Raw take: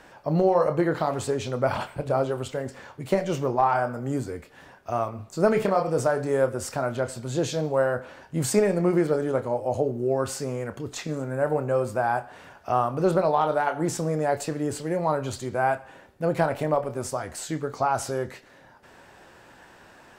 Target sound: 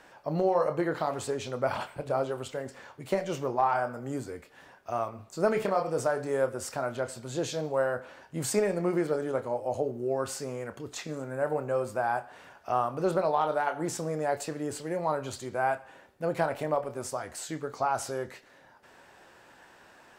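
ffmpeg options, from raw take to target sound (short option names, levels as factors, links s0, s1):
-af "lowshelf=f=240:g=-7,volume=0.668"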